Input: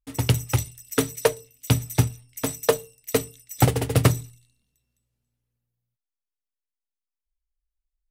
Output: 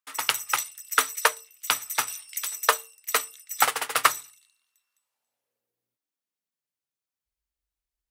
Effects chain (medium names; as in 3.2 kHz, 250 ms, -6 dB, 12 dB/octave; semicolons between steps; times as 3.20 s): high-pass sweep 1.2 kHz -> 85 Hz, 4.89–7.01 s; 2.08–2.52 s: three bands compressed up and down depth 100%; trim +3 dB